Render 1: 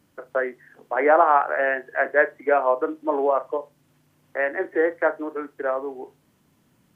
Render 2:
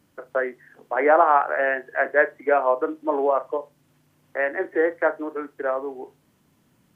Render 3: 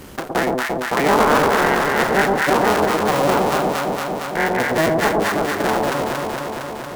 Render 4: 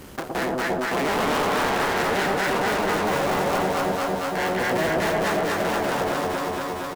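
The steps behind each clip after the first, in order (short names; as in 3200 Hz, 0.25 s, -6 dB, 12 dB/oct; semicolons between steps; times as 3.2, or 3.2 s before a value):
nothing audible
cycle switcher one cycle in 3, inverted; echo with dull and thin repeats by turns 0.115 s, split 960 Hz, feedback 76%, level -2 dB; fast leveller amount 50%; gain -1 dB
hard clip -19 dBFS, distortion -8 dB; feedback echo 0.241 s, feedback 55%, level -3.5 dB; gain -3.5 dB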